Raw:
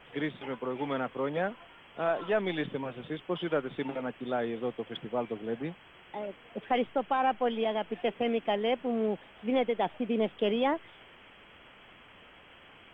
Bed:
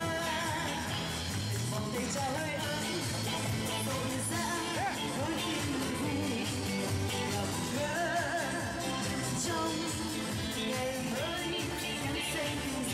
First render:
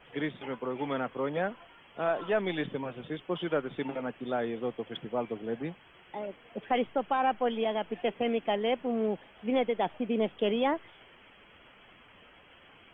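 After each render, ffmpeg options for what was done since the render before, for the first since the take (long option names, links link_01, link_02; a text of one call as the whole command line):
ffmpeg -i in.wav -af "afftdn=noise_reduction=6:noise_floor=-55" out.wav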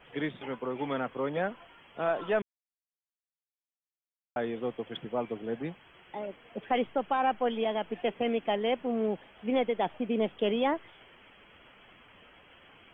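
ffmpeg -i in.wav -filter_complex "[0:a]asplit=3[link_01][link_02][link_03];[link_01]atrim=end=2.42,asetpts=PTS-STARTPTS,afade=type=out:start_time=2.416:duration=0.004:curve=hsin[link_04];[link_02]atrim=start=2.42:end=4.36,asetpts=PTS-STARTPTS,volume=0[link_05];[link_03]atrim=start=4.36,asetpts=PTS-STARTPTS,afade=type=in:duration=0.004:curve=hsin[link_06];[link_04][link_05][link_06]concat=n=3:v=0:a=1" out.wav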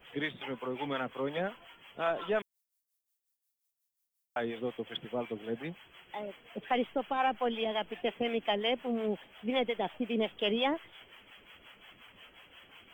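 ffmpeg -i in.wav -filter_complex "[0:a]acrossover=split=560[link_01][link_02];[link_01]aeval=exprs='val(0)*(1-0.7/2+0.7/2*cos(2*PI*5.6*n/s))':channel_layout=same[link_03];[link_02]aeval=exprs='val(0)*(1-0.7/2-0.7/2*cos(2*PI*5.6*n/s))':channel_layout=same[link_04];[link_03][link_04]amix=inputs=2:normalize=0,crystalizer=i=4:c=0" out.wav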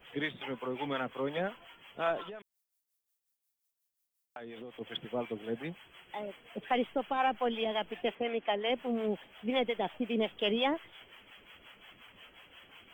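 ffmpeg -i in.wav -filter_complex "[0:a]asplit=3[link_01][link_02][link_03];[link_01]afade=type=out:start_time=2.21:duration=0.02[link_04];[link_02]acompressor=threshold=-41dB:ratio=12:attack=3.2:release=140:knee=1:detection=peak,afade=type=in:start_time=2.21:duration=0.02,afade=type=out:start_time=4.8:duration=0.02[link_05];[link_03]afade=type=in:start_time=4.8:duration=0.02[link_06];[link_04][link_05][link_06]amix=inputs=3:normalize=0,asettb=1/sr,asplit=3[link_07][link_08][link_09];[link_07]atrim=end=5.304[link_10];[link_08]atrim=start=5.3:end=7.05,asetpts=PTS-STARTPTS,afade=type=in:duration=0.004:curve=qsin,afade=type=out:start_time=1.746:duration=0.004:curve=qsin,equalizer=frequency=9000:width=4.2:gain=5.5[link_11];[link_09]atrim=start=7.046[link_12];[link_10][link_11]acrossfade=duration=0.004:curve1=hsin:curve2=qsin[link_13];[link_13][link_12]acrossfade=duration=0.004:curve1=qsin:curve2=hsin,asettb=1/sr,asplit=3[link_14][link_15][link_16];[link_14]atrim=end=8.154[link_17];[link_15]atrim=start=8.15:end=8.7,asetpts=PTS-STARTPTS,afade=type=in:duration=0.004:curve=qsin,afade=type=out:start_time=0.546:duration=0.004:curve=qsin,bass=frequency=250:gain=-8,treble=frequency=4000:gain=-14[link_18];[link_16]atrim=start=8.696[link_19];[link_17][link_18]acrossfade=duration=0.004:curve1=hsin:curve2=qsin[link_20];[link_20][link_19]acrossfade=duration=0.004:curve1=qsin:curve2=hsin" out.wav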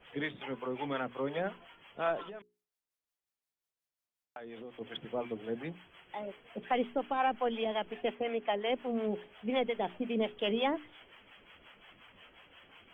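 ffmpeg -i in.wav -af "lowpass=frequency=2700:poles=1,bandreject=frequency=60:width_type=h:width=6,bandreject=frequency=120:width_type=h:width=6,bandreject=frequency=180:width_type=h:width=6,bandreject=frequency=240:width_type=h:width=6,bandreject=frequency=300:width_type=h:width=6,bandreject=frequency=360:width_type=h:width=6,bandreject=frequency=420:width_type=h:width=6" out.wav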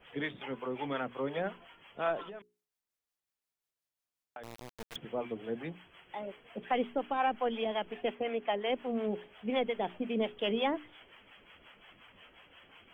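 ffmpeg -i in.wav -filter_complex "[0:a]asettb=1/sr,asplit=3[link_01][link_02][link_03];[link_01]atrim=end=4.434[link_04];[link_02]atrim=start=4.43:end=4.96,asetpts=PTS-STARTPTS,afade=type=in:duration=0.004:curve=qsin,afade=type=out:start_time=0.526:duration=0.004:curve=qsin,acrusher=bits=4:dc=4:mix=0:aa=0.000001[link_05];[link_03]atrim=start=4.956[link_06];[link_04][link_05]acrossfade=duration=0.004:curve1=hsin:curve2=qsin[link_07];[link_07][link_06]acrossfade=duration=0.004:curve1=qsin:curve2=hsin" out.wav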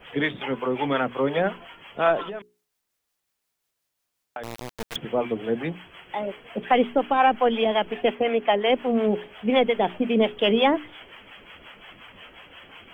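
ffmpeg -i in.wav -af "volume=11.5dB" out.wav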